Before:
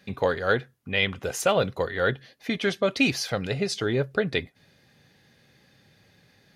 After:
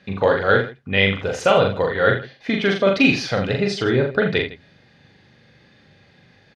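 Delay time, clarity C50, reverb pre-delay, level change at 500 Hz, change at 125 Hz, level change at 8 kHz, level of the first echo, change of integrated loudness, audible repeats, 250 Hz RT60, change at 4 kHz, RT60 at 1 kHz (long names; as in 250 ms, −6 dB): 41 ms, no reverb audible, no reverb audible, +7.5 dB, +7.0 dB, −3.0 dB, −3.0 dB, +7.0 dB, 3, no reverb audible, +5.0 dB, no reverb audible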